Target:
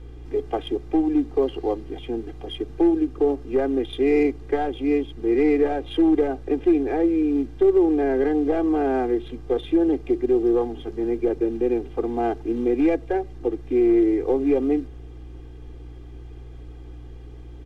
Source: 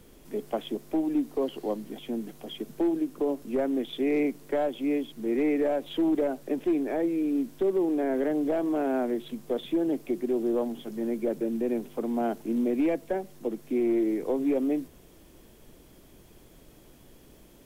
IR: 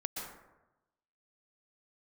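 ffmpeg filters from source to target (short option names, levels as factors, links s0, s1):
-af "adynamicsmooth=sensitivity=6.5:basefreq=3500,aeval=exprs='val(0)+0.00562*(sin(2*PI*60*n/s)+sin(2*PI*2*60*n/s)/2+sin(2*PI*3*60*n/s)/3+sin(2*PI*4*60*n/s)/4+sin(2*PI*5*60*n/s)/5)':c=same,aecho=1:1:2.5:0.96,volume=1.41"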